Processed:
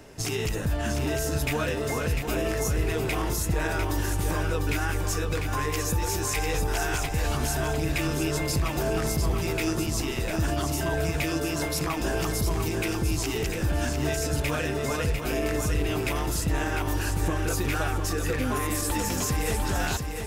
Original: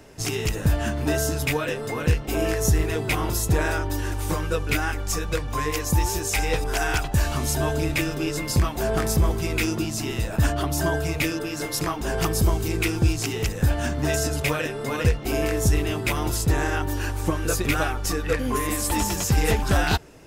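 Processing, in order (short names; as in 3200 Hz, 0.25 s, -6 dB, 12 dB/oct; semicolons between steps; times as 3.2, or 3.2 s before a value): limiter -19 dBFS, peak gain reduction 10.5 dB; lo-fi delay 0.699 s, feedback 35%, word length 10-bit, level -6 dB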